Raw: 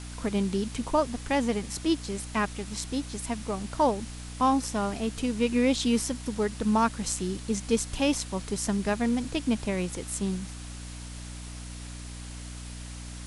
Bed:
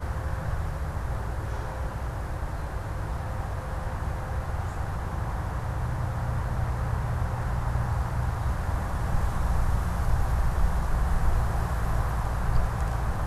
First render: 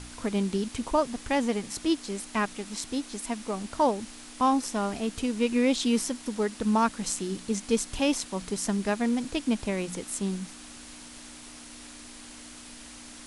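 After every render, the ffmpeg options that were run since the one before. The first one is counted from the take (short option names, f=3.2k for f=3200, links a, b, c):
-af "bandreject=f=60:t=h:w=4,bandreject=f=120:t=h:w=4,bandreject=f=180:t=h:w=4"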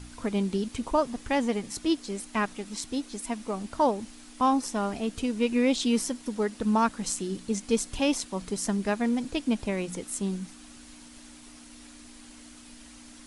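-af "afftdn=nr=6:nf=-46"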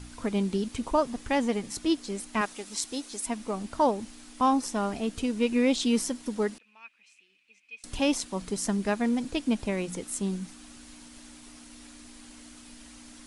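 -filter_complex "[0:a]asettb=1/sr,asplit=3[a][b][c];[a]atrim=end=2.414[d];[b]atrim=start=2.41:end=3.27,asetpts=PTS-STARTPTS,afade=t=in:d=0.004:c=qsin,afade=t=out:st=0.856:d=0.004:c=qsin,bass=f=250:g=-11,treble=f=4k:g=5[e];[c]atrim=start=3.266[f];[d][e]acrossfade=d=0.004:c1=hsin:c2=qsin[g];[g][f]acrossfade=d=0.004:c1=qsin:c2=hsin,asettb=1/sr,asplit=3[h][i][j];[h]atrim=end=6.584[k];[i]atrim=start=6.58:end=7.84,asetpts=PTS-STARTPTS,afade=t=in:d=0.004:c=qsin,afade=t=out:st=1.256:d=0.004:c=qsin,bandpass=f=2.5k:t=q:w=16[l];[j]atrim=start=7.836[m];[k][l]acrossfade=d=0.004:c1=hsin:c2=qsin[n];[n][m]acrossfade=d=0.004:c1=qsin:c2=hsin"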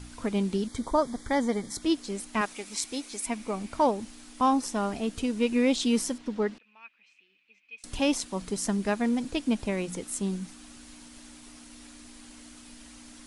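-filter_complex "[0:a]asettb=1/sr,asplit=3[a][b][c];[a]atrim=end=0.674[d];[b]atrim=start=0.67:end=1.82,asetpts=PTS-STARTPTS,afade=t=in:d=0.004:c=qsin,afade=t=out:st=1.146:d=0.004:c=qsin,asuperstop=centerf=2700:order=8:qfactor=3.2[e];[c]atrim=start=1.816[f];[d][e]acrossfade=d=0.004:c1=hsin:c2=qsin[g];[g][f]acrossfade=d=0.004:c1=qsin:c2=hsin,asettb=1/sr,asplit=3[h][i][j];[h]atrim=end=2.504[k];[i]atrim=start=2.5:end=3.88,asetpts=PTS-STARTPTS,afade=t=in:d=0.004:c=qsin,afade=t=out:st=1.376:d=0.004:c=qsin,equalizer=f=2.3k:w=6.7:g=9[l];[j]atrim=start=3.876[m];[k][l]acrossfade=d=0.004:c1=hsin:c2=qsin[n];[n][m]acrossfade=d=0.004:c1=qsin:c2=hsin,asettb=1/sr,asplit=3[o][p][q];[o]atrim=end=6.184[r];[p]atrim=start=6.18:end=7.78,asetpts=PTS-STARTPTS,afade=t=in:d=0.004:c=qsin,afade=t=out:st=1.596:d=0.004:c=qsin,lowpass=3.9k[s];[q]atrim=start=7.776[t];[r][s]acrossfade=d=0.004:c1=hsin:c2=qsin[u];[u][t]acrossfade=d=0.004:c1=qsin:c2=hsin"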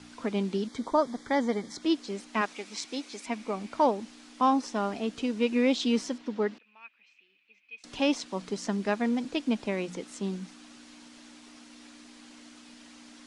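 -filter_complex "[0:a]acrossover=split=7800[a][b];[b]acompressor=threshold=-53dB:ratio=4:attack=1:release=60[c];[a][c]amix=inputs=2:normalize=0,acrossover=split=160 7000:gain=0.112 1 0.158[d][e][f];[d][e][f]amix=inputs=3:normalize=0"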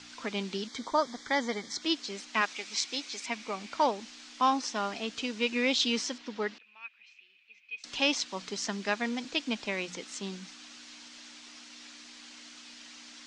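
-af "lowpass=f=7.1k:w=0.5412,lowpass=f=7.1k:w=1.3066,tiltshelf=f=1.1k:g=-7.5"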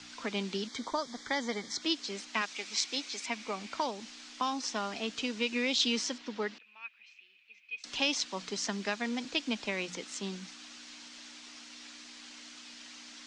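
-filter_complex "[0:a]acrossover=split=180|3000[a][b][c];[b]acompressor=threshold=-30dB:ratio=6[d];[a][d][c]amix=inputs=3:normalize=0"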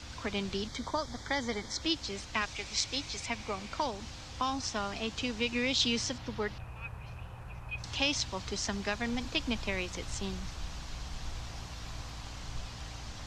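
-filter_complex "[1:a]volume=-16.5dB[a];[0:a][a]amix=inputs=2:normalize=0"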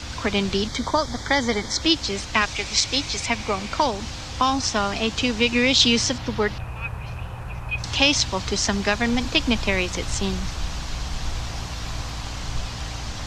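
-af "volume=12dB,alimiter=limit=-2dB:level=0:latency=1"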